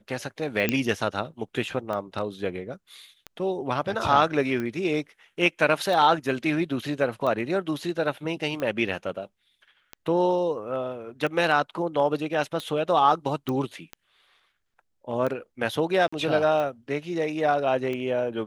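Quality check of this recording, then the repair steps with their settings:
scratch tick 45 rpm
0:00.69: click −8 dBFS
0:13.49: click −17 dBFS
0:16.08–0:16.12: drop-out 45 ms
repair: click removal
repair the gap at 0:16.08, 45 ms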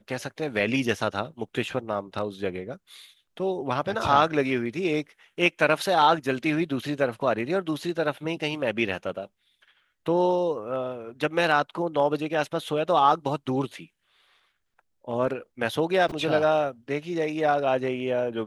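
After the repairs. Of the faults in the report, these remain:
0:13.49: click

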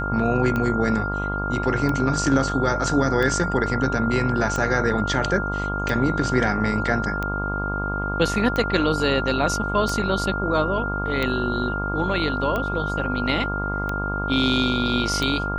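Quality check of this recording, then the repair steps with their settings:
mains buzz 50 Hz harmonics 29 −28 dBFS
scratch tick 45 rpm −13 dBFS
whistle 1,400 Hz −27 dBFS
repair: click removal
hum removal 50 Hz, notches 29
notch filter 1,400 Hz, Q 30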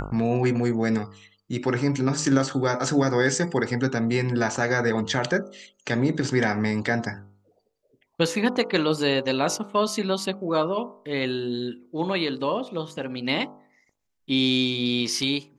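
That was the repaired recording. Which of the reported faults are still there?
none of them is left

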